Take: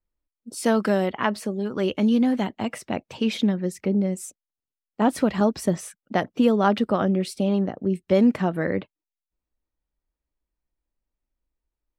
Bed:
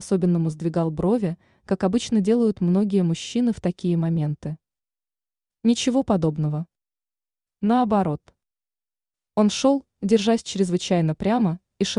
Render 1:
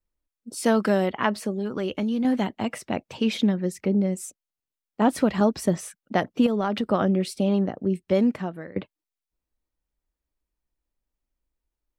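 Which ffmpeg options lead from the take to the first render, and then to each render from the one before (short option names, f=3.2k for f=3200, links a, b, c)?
-filter_complex "[0:a]asettb=1/sr,asplit=3[a][b][c];[a]atrim=end=1.554[d];[b]atrim=start=1.55:end=2.25,asetpts=PTS-STARTPTS,afade=t=in:d=0.004:c=qsin,afade=t=out:st=0.696:d=0.004:c=qsin,acompressor=threshold=-23dB:ratio=4:attack=3.2:release=140:knee=1:detection=peak[e];[c]atrim=start=2.246[f];[d][e]acrossfade=d=0.004:c1=hsin:c2=qsin[g];[g][f]acrossfade=d=0.004:c1=qsin:c2=hsin,asettb=1/sr,asplit=3[h][i][j];[h]atrim=end=6.464[k];[i]atrim=start=6.46:end=6.9,asetpts=PTS-STARTPTS,afade=t=in:d=0.004:c=qsin,afade=t=out:st=0.436:d=0.004:c=qsin,acompressor=threshold=-20dB:ratio=6:attack=3.2:release=140:knee=1:detection=peak[l];[j]atrim=start=6.896[m];[k][l]acrossfade=d=0.004:c1=hsin:c2=qsin[n];[n][m]acrossfade=d=0.004:c1=qsin:c2=hsin,asplit=2[o][p];[o]atrim=end=8.76,asetpts=PTS-STARTPTS,afade=t=out:st=7.62:d=1.14:c=qsin:silence=0.0668344[q];[p]atrim=start=8.76,asetpts=PTS-STARTPTS,afade=t=in:d=0.004:c=hsin:silence=0.0668344[r];[q][r]concat=n=2:v=0:a=1"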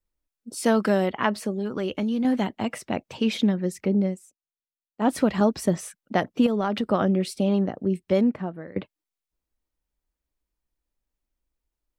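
-filter_complex "[0:a]asettb=1/sr,asplit=3[a][b][c];[a]atrim=end=8.214[d];[b]atrim=start=8.21:end=8.67,asetpts=PTS-STARTPTS,afade=t=in:d=0.004:c=qsin,afade=t=out:st=0.456:d=0.004:c=qsin,lowpass=f=1.4k:p=1[e];[c]atrim=start=8.666[f];[d][e]acrossfade=d=0.004:c1=hsin:c2=qsin[g];[g][f]acrossfade=d=0.004:c1=qsin:c2=hsin,asplit=3[h][i][j];[h]atrim=end=4.2,asetpts=PTS-STARTPTS,afade=t=out:st=4.07:d=0.13:silence=0.158489[k];[i]atrim=start=4.2:end=4.96,asetpts=PTS-STARTPTS,volume=-16dB[l];[j]atrim=start=4.96,asetpts=PTS-STARTPTS,afade=t=in:d=0.13:silence=0.158489[m];[k][l][m]concat=n=3:v=0:a=1"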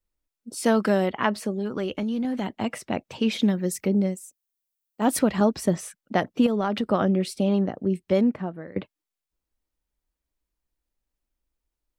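-filter_complex "[0:a]asettb=1/sr,asplit=3[a][b][c];[a]atrim=end=1.834[d];[b]atrim=start=1.83:end=2.61,asetpts=PTS-STARTPTS,afade=t=in:d=0.004:c=qsin,afade=t=out:st=0.776:d=0.004:c=qsin,acompressor=threshold=-23dB:ratio=6:attack=3.2:release=140:knee=1:detection=peak[e];[c]atrim=start=2.606[f];[d][e]acrossfade=d=0.004:c1=hsin:c2=qsin[g];[g][f]acrossfade=d=0.004:c1=qsin:c2=hsin,asettb=1/sr,asplit=3[h][i][j];[h]atrim=end=3.424[k];[i]atrim=start=3.42:end=5.19,asetpts=PTS-STARTPTS,afade=t=in:d=0.004:c=qsin,afade=t=out:st=1.766:d=0.004:c=qsin,aemphasis=mode=production:type=50kf[l];[j]atrim=start=5.186[m];[k][l]acrossfade=d=0.004:c1=hsin:c2=qsin[n];[n][m]acrossfade=d=0.004:c1=qsin:c2=hsin"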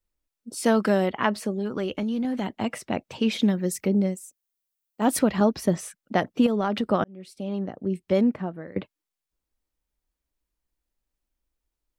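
-filter_complex "[0:a]asettb=1/sr,asplit=3[a][b][c];[a]atrim=end=5.244[d];[b]atrim=start=5.24:end=5.69,asetpts=PTS-STARTPTS,afade=t=in:d=0.004:c=qsin,afade=t=out:st=0.446:d=0.004:c=qsin,equalizer=f=8.1k:w=4.7:g=-11[e];[c]atrim=start=5.686[f];[d][e]acrossfade=d=0.004:c1=hsin:c2=qsin[g];[g][f]acrossfade=d=0.004:c1=qsin:c2=hsin,asplit=2[h][i];[h]atrim=end=7.04,asetpts=PTS-STARTPTS,afade=t=out:st=7.036:d=0.004:c=hsin[j];[i]atrim=start=7.04,asetpts=PTS-STARTPTS,afade=t=in:d=1.17[k];[j][k]concat=n=2:v=0:a=1"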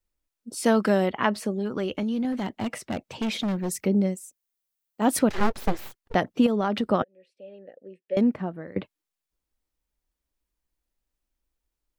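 -filter_complex "[0:a]asettb=1/sr,asplit=3[a][b][c];[a]atrim=end=2.324[d];[b]atrim=start=2.32:end=3.71,asetpts=PTS-STARTPTS,afade=t=in:d=0.004:c=qsin,afade=t=out:st=1.386:d=0.004:c=qsin,volume=24dB,asoftclip=hard,volume=-24dB[e];[c]atrim=start=3.706[f];[d][e]acrossfade=d=0.004:c1=hsin:c2=qsin[g];[g][f]acrossfade=d=0.004:c1=qsin:c2=hsin,asettb=1/sr,asplit=3[h][i][j];[h]atrim=end=5.294[k];[i]atrim=start=5.29:end=6.15,asetpts=PTS-STARTPTS,afade=t=in:d=0.004:c=qsin,afade=t=out:st=0.856:d=0.004:c=qsin,aeval=exprs='abs(val(0))':c=same[l];[j]atrim=start=6.146[m];[k][l]acrossfade=d=0.004:c1=hsin:c2=qsin[n];[n][m]acrossfade=d=0.004:c1=qsin:c2=hsin,asettb=1/sr,asplit=3[o][p][q];[o]atrim=end=7.024[r];[p]atrim=start=7.02:end=8.17,asetpts=PTS-STARTPTS,afade=t=in:d=0.004:c=qsin,afade=t=out:st=1.146:d=0.004:c=qsin,asplit=3[s][t][u];[s]bandpass=f=530:t=q:w=8,volume=0dB[v];[t]bandpass=f=1.84k:t=q:w=8,volume=-6dB[w];[u]bandpass=f=2.48k:t=q:w=8,volume=-9dB[x];[v][w][x]amix=inputs=3:normalize=0[y];[q]atrim=start=8.166[z];[r][y]acrossfade=d=0.004:c1=hsin:c2=qsin[aa];[aa][z]acrossfade=d=0.004:c1=qsin:c2=hsin"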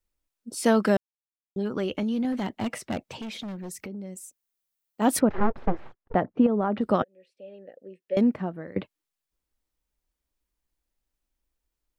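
-filter_complex "[0:a]asettb=1/sr,asplit=3[a][b][c];[a]atrim=end=3.164[d];[b]atrim=start=3.16:end=4.16,asetpts=PTS-STARTPTS,afade=t=in:d=0.004:c=qsin,afade=t=out:st=0.996:d=0.004:c=qsin,acompressor=threshold=-35dB:ratio=6:attack=3.2:release=140:knee=1:detection=peak[e];[c]atrim=start=4.156[f];[d][e]acrossfade=d=0.004:c1=hsin:c2=qsin[g];[g][f]acrossfade=d=0.004:c1=qsin:c2=hsin,asplit=3[h][i][j];[h]afade=t=out:st=5.19:d=0.02[k];[i]lowpass=1.4k,afade=t=in:st=5.19:d=0.02,afade=t=out:st=6.8:d=0.02[l];[j]afade=t=in:st=6.8:d=0.02[m];[k][l][m]amix=inputs=3:normalize=0,asplit=3[n][o][p];[n]atrim=end=0.97,asetpts=PTS-STARTPTS,afade=t=out:st=0.966:d=0.004:c=hsin[q];[o]atrim=start=0.97:end=1.56,asetpts=PTS-STARTPTS,volume=0[r];[p]atrim=start=1.56,asetpts=PTS-STARTPTS,afade=t=in:d=0.004:c=hsin[s];[q][r][s]concat=n=3:v=0:a=1"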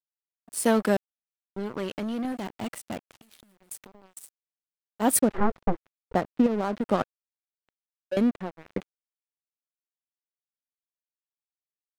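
-af "aexciter=amount=2.9:drive=4.6:freq=7.7k,aeval=exprs='sgn(val(0))*max(abs(val(0))-0.0211,0)':c=same"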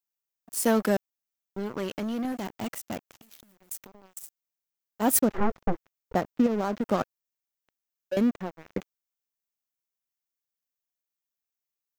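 -af "aexciter=amount=1.7:drive=3.5:freq=5.5k,asoftclip=type=tanh:threshold=-12dB"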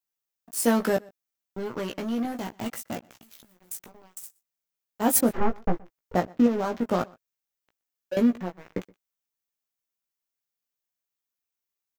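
-filter_complex "[0:a]asplit=2[a][b];[b]adelay=17,volume=-5dB[c];[a][c]amix=inputs=2:normalize=0,asplit=2[d][e];[e]adelay=122.4,volume=-25dB,highshelf=f=4k:g=-2.76[f];[d][f]amix=inputs=2:normalize=0"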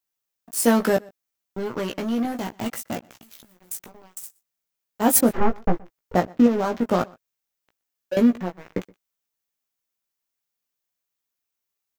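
-af "volume=4dB"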